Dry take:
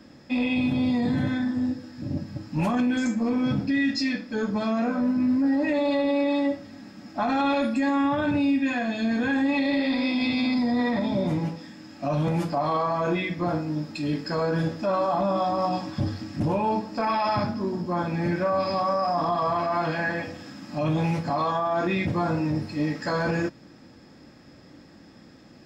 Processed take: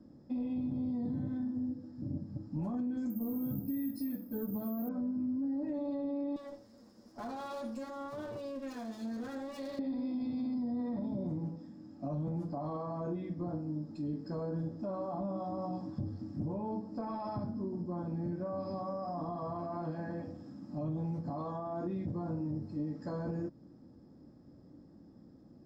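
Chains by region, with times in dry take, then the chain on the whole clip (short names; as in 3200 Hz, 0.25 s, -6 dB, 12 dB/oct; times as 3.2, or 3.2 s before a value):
3.1–4.89 high shelf 4900 Hz -8 dB + careless resampling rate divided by 3×, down none, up zero stuff
6.36–9.79 minimum comb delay 8.7 ms + tilt +3.5 dB/oct
whole clip: EQ curve 290 Hz 0 dB, 1100 Hz -11 dB, 2500 Hz -27 dB, 5100 Hz -16 dB, 8200 Hz -18 dB; compressor 3:1, threshold -29 dBFS; gain -5.5 dB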